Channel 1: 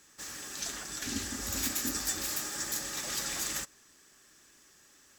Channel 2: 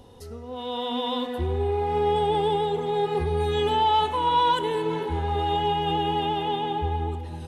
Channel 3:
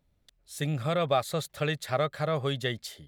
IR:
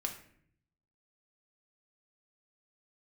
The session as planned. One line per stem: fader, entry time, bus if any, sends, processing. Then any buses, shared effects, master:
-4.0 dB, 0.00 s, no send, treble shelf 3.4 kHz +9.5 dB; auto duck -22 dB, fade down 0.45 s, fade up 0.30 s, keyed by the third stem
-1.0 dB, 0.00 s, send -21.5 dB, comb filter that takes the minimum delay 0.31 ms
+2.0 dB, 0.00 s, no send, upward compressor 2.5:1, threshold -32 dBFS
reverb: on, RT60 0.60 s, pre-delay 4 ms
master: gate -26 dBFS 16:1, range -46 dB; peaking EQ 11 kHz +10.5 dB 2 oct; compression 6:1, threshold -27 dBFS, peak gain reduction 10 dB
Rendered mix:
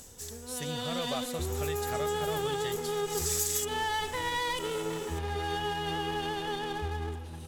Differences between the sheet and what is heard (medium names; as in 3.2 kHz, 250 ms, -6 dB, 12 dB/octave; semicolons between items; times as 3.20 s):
stem 2 -1.0 dB -> -7.5 dB; stem 3 +2.0 dB -> -10.0 dB; master: missing gate -26 dBFS 16:1, range -46 dB